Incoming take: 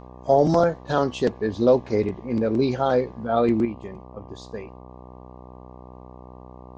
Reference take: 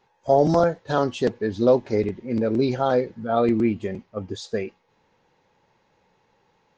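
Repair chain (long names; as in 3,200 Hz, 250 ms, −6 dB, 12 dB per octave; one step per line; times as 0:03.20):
hum removal 62.5 Hz, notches 19
level correction +8.5 dB, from 0:03.65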